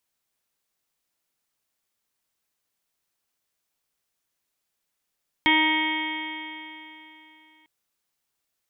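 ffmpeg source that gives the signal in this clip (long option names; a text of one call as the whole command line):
ffmpeg -f lavfi -i "aevalsrc='0.075*pow(10,-3*t/3.18)*sin(2*PI*311.11*t)+0.00841*pow(10,-3*t/3.18)*sin(2*PI*622.85*t)+0.0794*pow(10,-3*t/3.18)*sin(2*PI*935.85*t)+0.0119*pow(10,-3*t/3.18)*sin(2*PI*1250.75*t)+0.00944*pow(10,-3*t/3.18)*sin(2*PI*1568.16*t)+0.0668*pow(10,-3*t/3.18)*sin(2*PI*1888.7*t)+0.106*pow(10,-3*t/3.18)*sin(2*PI*2212.97*t)+0.0168*pow(10,-3*t/3.18)*sin(2*PI*2541.56*t)+0.0168*pow(10,-3*t/3.18)*sin(2*PI*2875.05*t)+0.0668*pow(10,-3*t/3.18)*sin(2*PI*3214*t)+0.0119*pow(10,-3*t/3.18)*sin(2*PI*3558.96*t)':duration=2.2:sample_rate=44100" out.wav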